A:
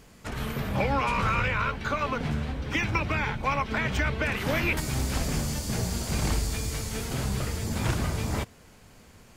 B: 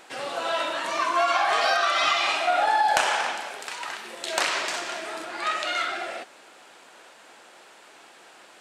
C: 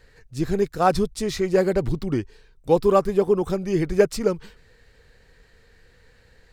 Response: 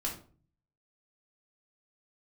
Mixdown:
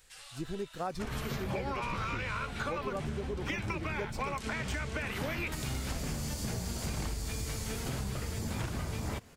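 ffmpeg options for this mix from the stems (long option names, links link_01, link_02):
-filter_complex "[0:a]adelay=750,volume=-2dB[link_01];[1:a]highpass=710,aderivative,volume=-6dB[link_02];[2:a]bandreject=frequency=440:width=12,volume=-13dB,asplit=2[link_03][link_04];[link_04]apad=whole_len=379483[link_05];[link_02][link_05]sidechaincompress=threshold=-37dB:ratio=8:attack=16:release=776[link_06];[link_01][link_06][link_03]amix=inputs=3:normalize=0,acompressor=threshold=-32dB:ratio=6"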